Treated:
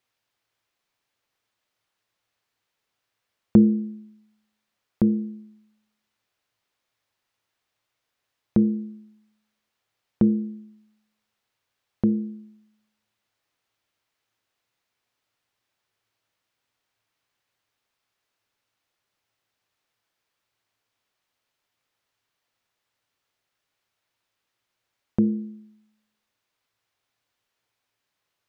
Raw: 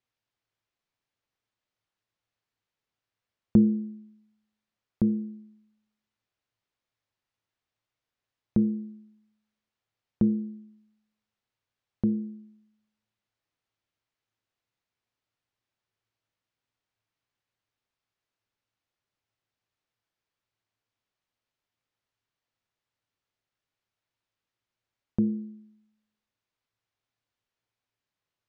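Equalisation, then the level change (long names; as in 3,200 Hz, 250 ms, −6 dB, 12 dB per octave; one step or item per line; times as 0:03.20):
low-shelf EQ 270 Hz −8 dB
+9.0 dB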